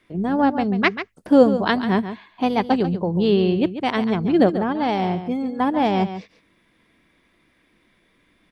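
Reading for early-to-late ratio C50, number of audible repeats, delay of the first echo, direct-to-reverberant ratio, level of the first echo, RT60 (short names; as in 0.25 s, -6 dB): none, 1, 0.14 s, none, -11.0 dB, none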